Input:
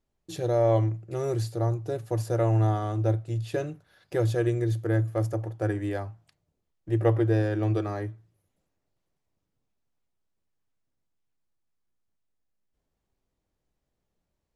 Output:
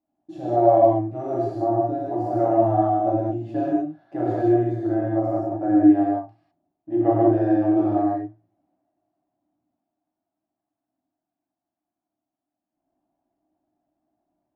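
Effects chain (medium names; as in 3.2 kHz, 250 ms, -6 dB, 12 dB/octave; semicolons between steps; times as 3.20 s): two resonant band-passes 460 Hz, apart 1.2 oct; gated-style reverb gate 230 ms flat, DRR -8 dB; trim +8.5 dB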